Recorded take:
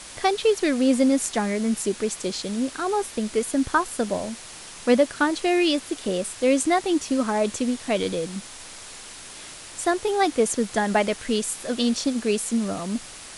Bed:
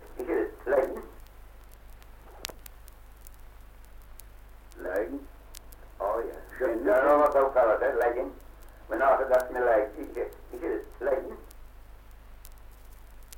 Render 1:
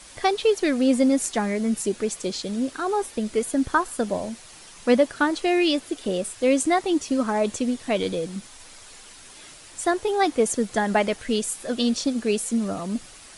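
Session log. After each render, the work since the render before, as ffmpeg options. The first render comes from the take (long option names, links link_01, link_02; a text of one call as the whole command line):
ffmpeg -i in.wav -af "afftdn=noise_reduction=7:noise_floor=-41" out.wav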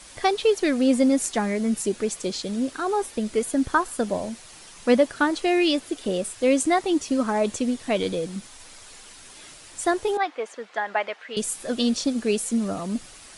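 ffmpeg -i in.wav -filter_complex "[0:a]asettb=1/sr,asplit=3[link_01][link_02][link_03];[link_01]atrim=end=10.174[link_04];[link_02]atrim=start=10.17:end=11.37,asetpts=PTS-STARTPTS,afade=type=in:duration=0.004:curve=qsin,afade=type=out:start_time=1.196:duration=0.004:curve=qsin,highpass=760,lowpass=2600[link_05];[link_03]atrim=start=11.366[link_06];[link_04][link_05]acrossfade=duration=0.004:curve1=hsin:curve2=qsin[link_07];[link_07][link_06]acrossfade=duration=0.004:curve1=qsin:curve2=hsin" out.wav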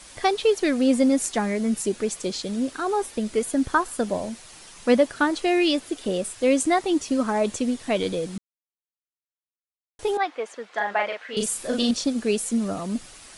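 ffmpeg -i in.wav -filter_complex "[0:a]asettb=1/sr,asplit=3[link_01][link_02][link_03];[link_01]atrim=end=10.694[link_04];[link_02]atrim=start=10.69:end=11.91,asetpts=PTS-STARTPTS,afade=type=in:duration=0.004:curve=qsin,afade=type=out:start_time=1.216:duration=0.004:curve=qsin,asplit=2[link_05][link_06];[link_06]adelay=39,volume=-3dB[link_07];[link_05][link_07]amix=inputs=2:normalize=0,atrim=end_sample=53802[link_08];[link_03]atrim=start=11.906[link_09];[link_04][link_08]acrossfade=duration=0.004:curve1=hsin:curve2=qsin[link_10];[link_10][link_09]acrossfade=duration=0.004:curve1=qsin:curve2=hsin,asplit=3[link_11][link_12][link_13];[link_11]atrim=end=8.38,asetpts=PTS-STARTPTS,afade=type=out:start_time=8.376:duration=0.004:curve=hsin[link_14];[link_12]atrim=start=8.38:end=9.99,asetpts=PTS-STARTPTS,volume=0[link_15];[link_13]atrim=start=9.99,asetpts=PTS-STARTPTS,afade=type=in:duration=0.004:curve=hsin[link_16];[link_14][link_15][link_16]concat=n=3:v=0:a=1" out.wav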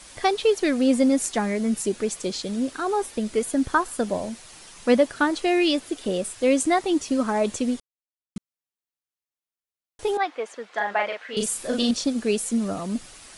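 ffmpeg -i in.wav -filter_complex "[0:a]asplit=3[link_01][link_02][link_03];[link_01]atrim=end=7.8,asetpts=PTS-STARTPTS,afade=type=out:start_time=7.796:duration=0.004:curve=hsin[link_04];[link_02]atrim=start=7.8:end=8.36,asetpts=PTS-STARTPTS,volume=0[link_05];[link_03]atrim=start=8.36,asetpts=PTS-STARTPTS,afade=type=in:duration=0.004:curve=hsin[link_06];[link_04][link_05][link_06]concat=n=3:v=0:a=1" out.wav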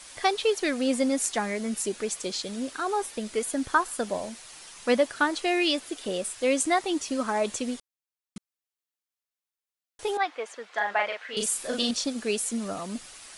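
ffmpeg -i in.wav -af "lowshelf=frequency=440:gain=-9.5" out.wav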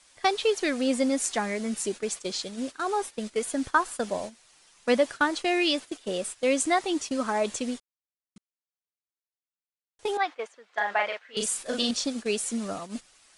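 ffmpeg -i in.wav -af "agate=range=-12dB:threshold=-34dB:ratio=16:detection=peak,lowpass=frequency=10000:width=0.5412,lowpass=frequency=10000:width=1.3066" out.wav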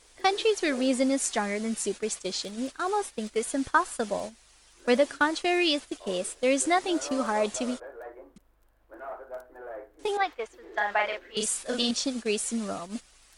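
ffmpeg -i in.wav -i bed.wav -filter_complex "[1:a]volume=-17dB[link_01];[0:a][link_01]amix=inputs=2:normalize=0" out.wav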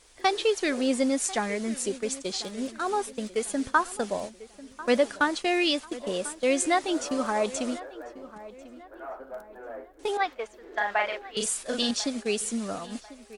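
ffmpeg -i in.wav -filter_complex "[0:a]asplit=2[link_01][link_02];[link_02]adelay=1044,lowpass=frequency=2300:poles=1,volume=-17dB,asplit=2[link_03][link_04];[link_04]adelay=1044,lowpass=frequency=2300:poles=1,volume=0.42,asplit=2[link_05][link_06];[link_06]adelay=1044,lowpass=frequency=2300:poles=1,volume=0.42,asplit=2[link_07][link_08];[link_08]adelay=1044,lowpass=frequency=2300:poles=1,volume=0.42[link_09];[link_01][link_03][link_05][link_07][link_09]amix=inputs=5:normalize=0" out.wav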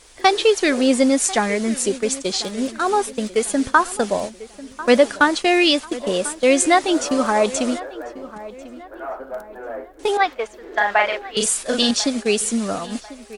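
ffmpeg -i in.wav -af "volume=9dB,alimiter=limit=-2dB:level=0:latency=1" out.wav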